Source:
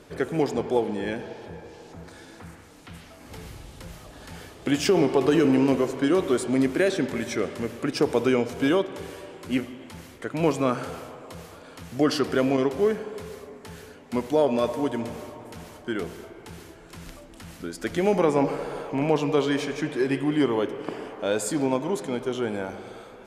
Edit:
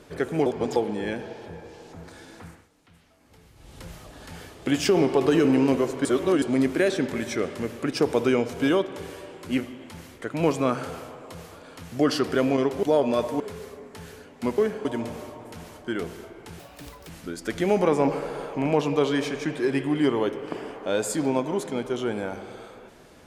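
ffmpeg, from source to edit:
-filter_complex "[0:a]asplit=13[s0][s1][s2][s3][s4][s5][s6][s7][s8][s9][s10][s11][s12];[s0]atrim=end=0.462[s13];[s1]atrim=start=0.458:end=0.762,asetpts=PTS-STARTPTS,areverse[s14];[s2]atrim=start=0.758:end=2.69,asetpts=PTS-STARTPTS,afade=t=out:st=1.692:d=0.24:silence=0.211349[s15];[s3]atrim=start=2.69:end=3.55,asetpts=PTS-STARTPTS,volume=0.211[s16];[s4]atrim=start=3.55:end=6.052,asetpts=PTS-STARTPTS,afade=t=in:d=0.24:silence=0.211349[s17];[s5]atrim=start=6.048:end=6.422,asetpts=PTS-STARTPTS,areverse[s18];[s6]atrim=start=6.418:end=12.832[s19];[s7]atrim=start=14.278:end=14.852[s20];[s8]atrim=start=13.098:end=14.282[s21];[s9]atrim=start=12.828:end=13.102[s22];[s10]atrim=start=14.848:end=16.594[s23];[s11]atrim=start=16.59:end=17.46,asetpts=PTS-STARTPTS,asetrate=75852,aresample=44100,atrim=end_sample=22306,asetpts=PTS-STARTPTS[s24];[s12]atrim=start=17.456[s25];[s13][s14]acrossfade=d=0.004:c1=hsin:c2=hsin[s26];[s15][s16][s17]concat=n=3:v=0:a=1[s27];[s26][s27]acrossfade=d=0.004:c1=hsin:c2=hsin[s28];[s28][s18]acrossfade=d=0.004:c1=hsin:c2=hsin[s29];[s29][s19]acrossfade=d=0.004:c1=hsin:c2=hsin[s30];[s30][s20]acrossfade=d=0.004:c1=hsin:c2=hsin[s31];[s31][s21]acrossfade=d=0.004:c1=hsin:c2=hsin[s32];[s32][s22]acrossfade=d=0.004:c1=hsin:c2=hsin[s33];[s33][s23]acrossfade=d=0.004:c1=hsin:c2=hsin[s34];[s34][s24]acrossfade=d=0.004:c1=hsin:c2=hsin[s35];[s35][s25]acrossfade=d=0.004:c1=hsin:c2=hsin"

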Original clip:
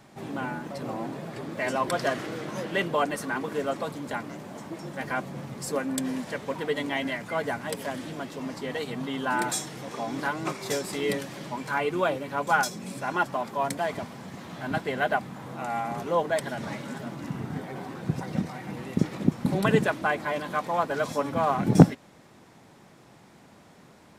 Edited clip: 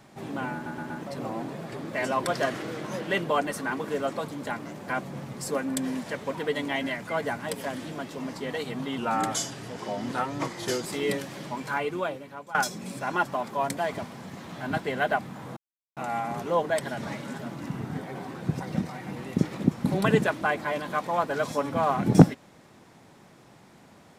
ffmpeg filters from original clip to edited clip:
-filter_complex "[0:a]asplit=9[s0][s1][s2][s3][s4][s5][s6][s7][s8];[s0]atrim=end=0.662[s9];[s1]atrim=start=0.538:end=0.662[s10];[s2]atrim=start=0.538:end=0.662[s11];[s3]atrim=start=0.538:end=4.522[s12];[s4]atrim=start=5.088:end=9.194[s13];[s5]atrim=start=9.19:end=10.86,asetpts=PTS-STARTPTS,asetrate=39249,aresample=44100,atrim=end_sample=82749,asetpts=PTS-STARTPTS[s14];[s6]atrim=start=10.856:end=12.55,asetpts=PTS-STARTPTS,afade=t=out:st=0.764:d=0.93:silence=0.0944061[s15];[s7]atrim=start=12.55:end=15.57,asetpts=PTS-STARTPTS,afade=t=in:d=0.004:c=hsin:silence=0.0944061,afade=t=out:st=3.016:d=0.004:c=hsin,apad=pad_dur=0.4[s16];[s8]atrim=start=15.57,asetpts=PTS-STARTPTS,afade=t=in:d=0.004:c=hsin[s17];[s9][s10]acrossfade=d=0.004:c1=hsin:c2=hsin[s18];[s18][s11]acrossfade=d=0.004:c1=hsin:c2=hsin[s19];[s19][s12]acrossfade=d=0.004:c1=hsin:c2=hsin[s20];[s20][s13]acrossfade=d=0.004:c1=hsin:c2=hsin[s21];[s21][s14]acrossfade=d=0.004:c1=hsin:c2=hsin[s22];[s15][s16][s17]concat=n=3:v=0:a=1[s23];[s22][s23]acrossfade=d=0.004:c1=hsin:c2=hsin"

